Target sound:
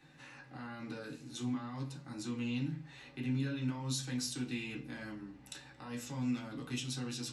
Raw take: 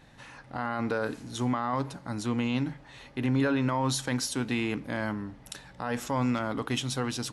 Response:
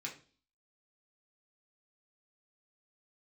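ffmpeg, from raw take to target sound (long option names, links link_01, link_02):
-filter_complex "[0:a]acrossover=split=230|3000[link_01][link_02][link_03];[link_02]acompressor=threshold=-46dB:ratio=2.5[link_04];[link_01][link_04][link_03]amix=inputs=3:normalize=0[link_05];[1:a]atrim=start_sample=2205,asetrate=48510,aresample=44100[link_06];[link_05][link_06]afir=irnorm=-1:irlink=0,volume=-3dB"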